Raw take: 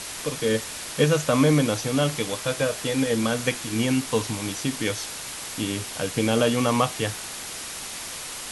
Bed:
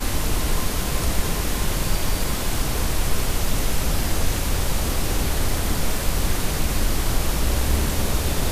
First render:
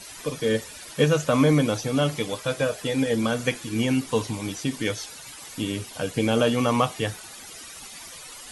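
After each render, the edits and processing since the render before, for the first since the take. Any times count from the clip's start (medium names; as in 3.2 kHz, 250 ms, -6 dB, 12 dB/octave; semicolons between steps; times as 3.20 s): noise reduction 13 dB, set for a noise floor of -36 dBFS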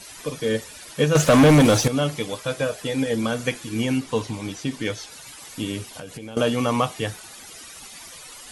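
1.15–1.88 s: waveshaping leveller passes 3; 3.98–5.12 s: treble shelf 9.5 kHz -9.5 dB; 5.93–6.37 s: compression 10:1, threshold -32 dBFS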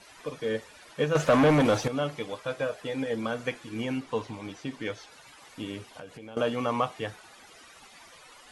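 low-pass 1.2 kHz 6 dB/octave; bass shelf 420 Hz -11.5 dB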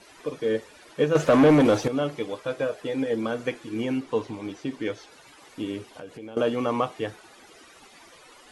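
peaking EQ 350 Hz +8 dB 1 oct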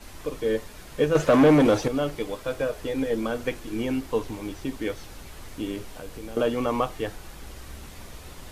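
add bed -21 dB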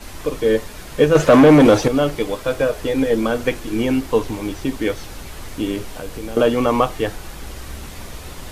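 trim +8.5 dB; peak limiter -2 dBFS, peak gain reduction 2.5 dB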